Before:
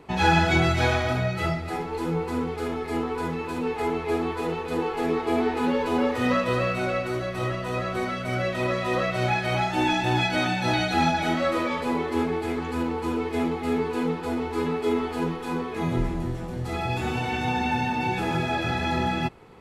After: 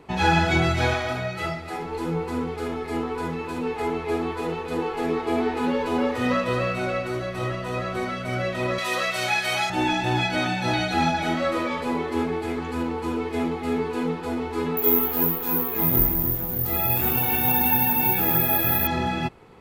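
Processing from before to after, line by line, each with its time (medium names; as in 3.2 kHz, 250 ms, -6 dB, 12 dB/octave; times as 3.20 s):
0.94–1.82 s: bass shelf 280 Hz -7.5 dB
8.78–9.70 s: tilt EQ +4 dB/octave
14.77–18.87 s: careless resampling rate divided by 3×, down none, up zero stuff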